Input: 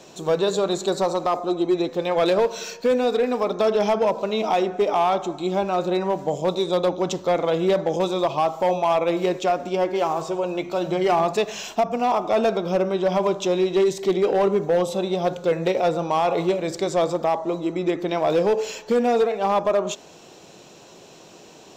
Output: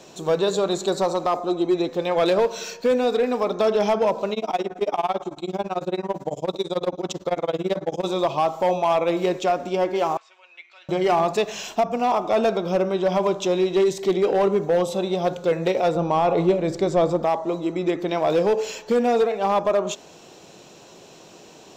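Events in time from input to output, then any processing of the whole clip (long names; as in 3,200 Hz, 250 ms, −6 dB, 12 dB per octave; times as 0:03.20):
0:04.33–0:08.05: amplitude tremolo 18 Hz, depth 97%
0:10.17–0:10.89: four-pole ladder band-pass 2,400 Hz, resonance 50%
0:15.95–0:17.24: spectral tilt −2 dB per octave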